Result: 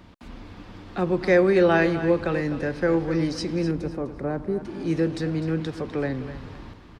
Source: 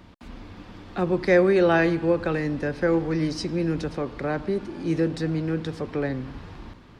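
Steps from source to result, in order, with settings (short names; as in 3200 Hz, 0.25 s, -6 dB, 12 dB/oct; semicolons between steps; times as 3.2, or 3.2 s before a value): 3.71–4.65 bell 3500 Hz -13.5 dB 2.6 oct; feedback echo 0.252 s, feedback 24%, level -12 dB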